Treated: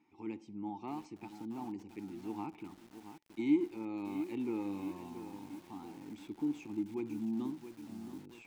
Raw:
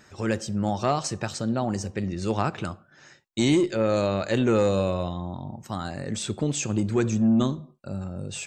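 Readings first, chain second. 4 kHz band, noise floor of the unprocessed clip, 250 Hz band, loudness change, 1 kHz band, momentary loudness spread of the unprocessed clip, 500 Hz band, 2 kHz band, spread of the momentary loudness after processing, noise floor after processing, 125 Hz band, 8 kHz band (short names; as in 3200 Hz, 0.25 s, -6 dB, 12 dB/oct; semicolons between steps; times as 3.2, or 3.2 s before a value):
under -20 dB, -57 dBFS, -11.0 dB, -14.0 dB, -16.5 dB, 14 LU, -19.0 dB, -19.0 dB, 12 LU, -60 dBFS, -24.5 dB, under -25 dB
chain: vowel filter u; lo-fi delay 0.677 s, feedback 55%, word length 8-bit, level -10 dB; gain -3.5 dB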